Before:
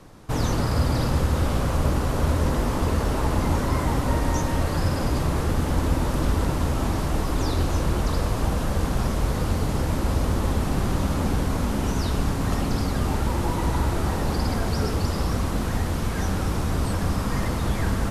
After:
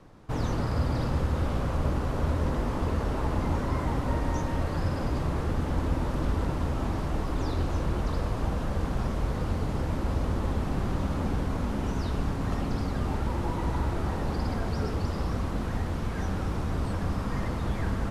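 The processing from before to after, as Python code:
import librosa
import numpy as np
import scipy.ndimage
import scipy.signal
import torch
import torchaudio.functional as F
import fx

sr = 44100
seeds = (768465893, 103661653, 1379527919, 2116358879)

y = fx.lowpass(x, sr, hz=2900.0, slope=6)
y = y * 10.0 ** (-5.0 / 20.0)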